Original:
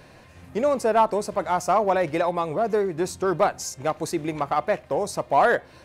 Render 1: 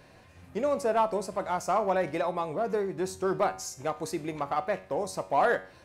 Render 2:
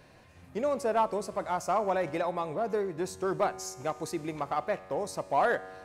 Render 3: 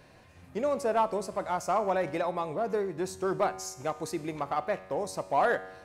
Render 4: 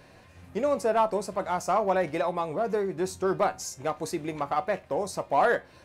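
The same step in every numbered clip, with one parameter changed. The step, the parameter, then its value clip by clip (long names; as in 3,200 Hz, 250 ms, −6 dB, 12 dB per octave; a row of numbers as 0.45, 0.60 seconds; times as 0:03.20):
tuned comb filter, decay: 0.45, 2.2, 1.1, 0.19 seconds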